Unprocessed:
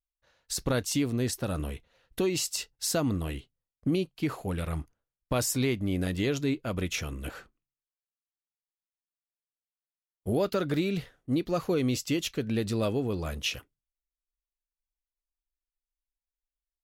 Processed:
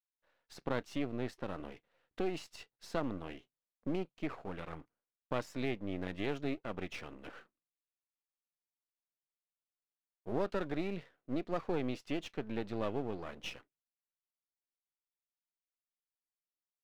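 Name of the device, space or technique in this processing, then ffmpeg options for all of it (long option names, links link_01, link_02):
crystal radio: -filter_complex "[0:a]highpass=220,lowpass=2500,aeval=exprs='if(lt(val(0),0),0.251*val(0),val(0))':channel_layout=same,asettb=1/sr,asplit=3[link_01][link_02][link_03];[link_01]atrim=end=6.084[link_04];[link_02]atrim=start=6.08:end=6.59,asetpts=PTS-STARTPTS,afade=type=in:duration=0.004:curve=qsin,afade=type=out:start_time=0.506:duration=0.004:curve=qsin,equalizer=frequency=12000:width_type=o:width=1.9:gain=4.5[link_05];[link_03]atrim=start=6.586[link_06];[link_04][link_05]acrossfade=duration=0.004:curve1=hsin:curve2=qsin[link_07];[link_07][link_06]acrossfade=duration=0.004:curve1=qsin:curve2=hsin,volume=-4dB"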